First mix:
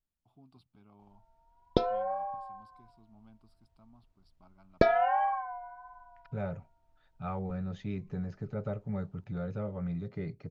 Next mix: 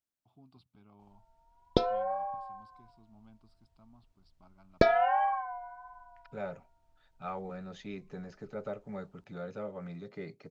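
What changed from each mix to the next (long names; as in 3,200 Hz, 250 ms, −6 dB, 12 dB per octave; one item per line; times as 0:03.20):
first voice: add high-frequency loss of the air 79 metres
second voice: add high-pass filter 270 Hz 12 dB per octave
master: add high-shelf EQ 3,800 Hz +7 dB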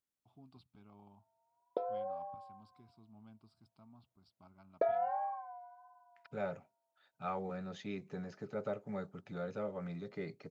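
background: add four-pole ladder band-pass 670 Hz, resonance 45%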